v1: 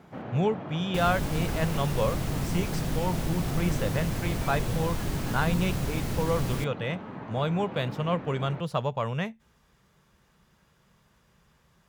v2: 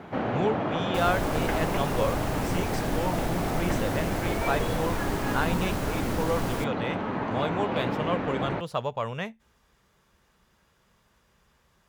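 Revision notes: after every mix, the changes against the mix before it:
first sound +11.5 dB; master: add peaking EQ 150 Hz -7 dB 0.91 oct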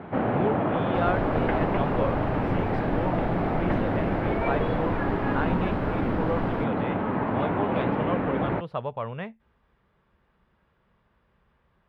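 first sound +4.5 dB; master: add distance through air 430 m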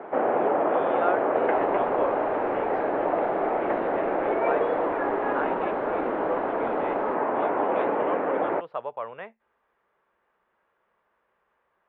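first sound: add peaking EQ 440 Hz +7 dB 2.2 oct; second sound: entry +0.50 s; master: add three-band isolator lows -24 dB, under 360 Hz, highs -16 dB, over 2.7 kHz

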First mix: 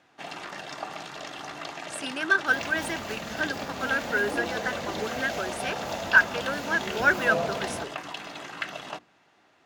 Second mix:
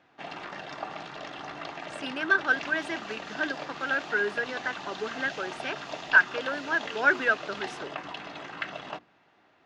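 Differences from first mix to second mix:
first sound: add treble shelf 11 kHz -8.5 dB; second sound: add brick-wall FIR high-pass 2.4 kHz; master: add distance through air 120 m

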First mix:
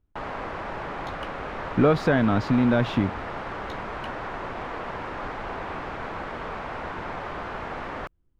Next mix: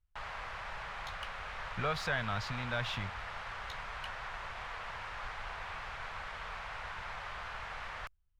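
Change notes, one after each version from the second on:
master: add amplifier tone stack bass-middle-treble 10-0-10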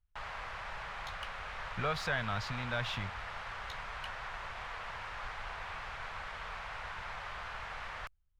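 no change

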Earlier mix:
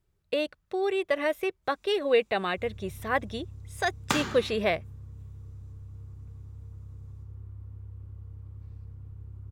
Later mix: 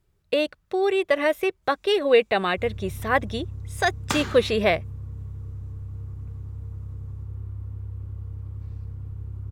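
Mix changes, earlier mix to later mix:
speech +5.5 dB; first sound +8.5 dB

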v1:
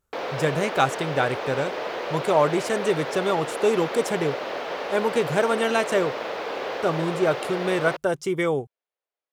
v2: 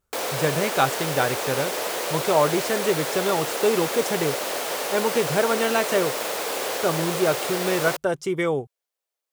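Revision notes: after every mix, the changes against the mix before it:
background: remove distance through air 270 m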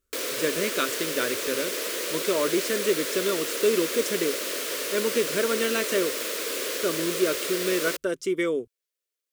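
master: add static phaser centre 330 Hz, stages 4

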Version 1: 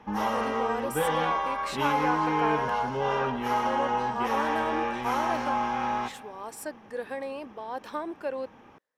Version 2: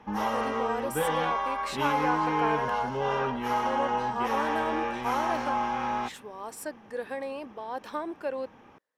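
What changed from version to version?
reverb: off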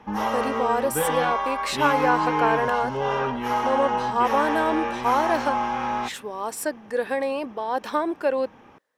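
speech +9.5 dB; background +3.5 dB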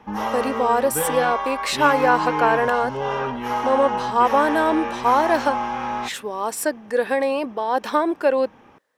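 speech +4.5 dB

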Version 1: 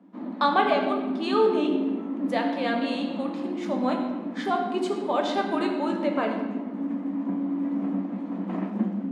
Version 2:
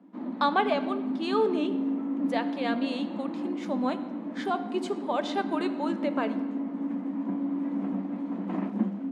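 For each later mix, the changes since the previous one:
speech: send -10.5 dB; background: send -11.0 dB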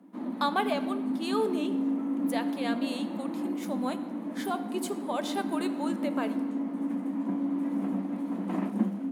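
speech -4.0 dB; master: remove distance through air 130 m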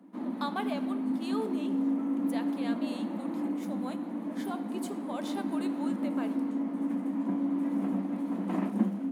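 speech -7.0 dB

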